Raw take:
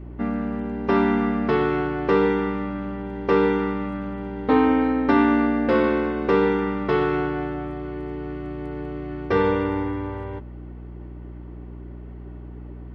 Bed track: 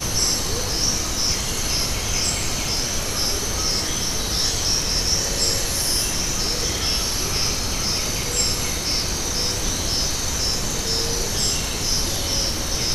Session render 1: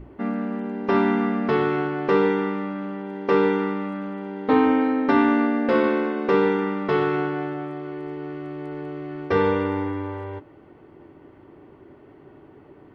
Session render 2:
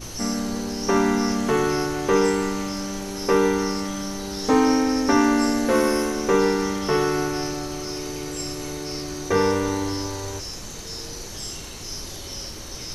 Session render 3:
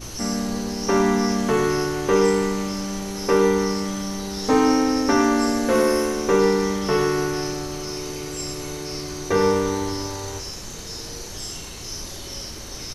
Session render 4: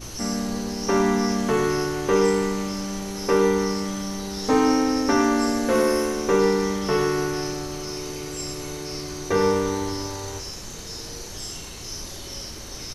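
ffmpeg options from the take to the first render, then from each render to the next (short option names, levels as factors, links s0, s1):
-af "bandreject=f=60:t=h:w=6,bandreject=f=120:t=h:w=6,bandreject=f=180:t=h:w=6,bandreject=f=240:t=h:w=6,bandreject=f=300:t=h:w=6,bandreject=f=360:t=h:w=6"
-filter_complex "[1:a]volume=0.251[s0];[0:a][s0]amix=inputs=2:normalize=0"
-filter_complex "[0:a]asplit=2[s0][s1];[s1]adelay=36,volume=0.299[s2];[s0][s2]amix=inputs=2:normalize=0,aecho=1:1:103:0.266"
-af "volume=0.841"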